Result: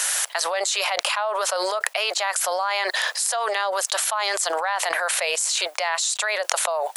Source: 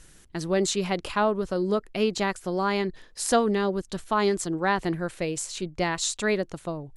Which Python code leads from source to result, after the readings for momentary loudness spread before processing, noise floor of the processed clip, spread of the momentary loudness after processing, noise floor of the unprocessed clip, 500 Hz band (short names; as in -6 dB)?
8 LU, -41 dBFS, 2 LU, -53 dBFS, -1.0 dB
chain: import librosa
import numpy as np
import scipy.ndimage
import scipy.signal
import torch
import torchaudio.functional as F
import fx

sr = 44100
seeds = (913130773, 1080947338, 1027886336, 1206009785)

y = scipy.signal.sosfilt(scipy.signal.butter(8, 600.0, 'highpass', fs=sr, output='sos'), x)
y = fx.high_shelf(y, sr, hz=10000.0, db=7.0)
y = fx.env_flatten(y, sr, amount_pct=100)
y = y * librosa.db_to_amplitude(-4.0)